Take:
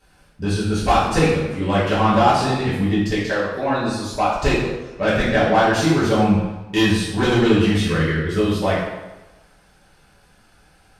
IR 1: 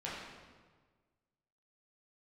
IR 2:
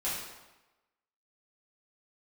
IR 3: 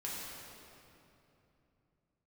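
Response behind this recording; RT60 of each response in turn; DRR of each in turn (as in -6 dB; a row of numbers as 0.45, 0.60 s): 2; 1.5, 1.1, 3.0 s; -7.5, -10.5, -6.5 dB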